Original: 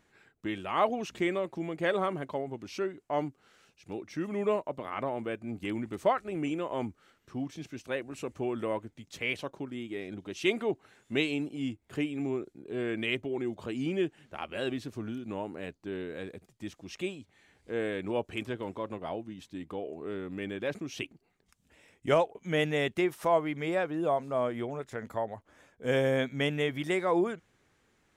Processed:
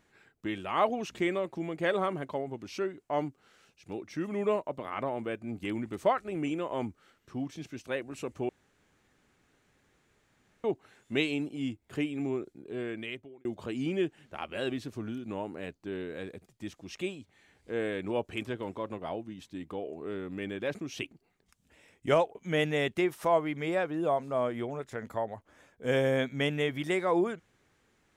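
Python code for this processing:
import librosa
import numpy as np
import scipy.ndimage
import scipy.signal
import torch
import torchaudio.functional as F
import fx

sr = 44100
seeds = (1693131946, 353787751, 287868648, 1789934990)

y = fx.edit(x, sr, fx.room_tone_fill(start_s=8.49, length_s=2.15),
    fx.fade_out_span(start_s=12.57, length_s=0.88), tone=tone)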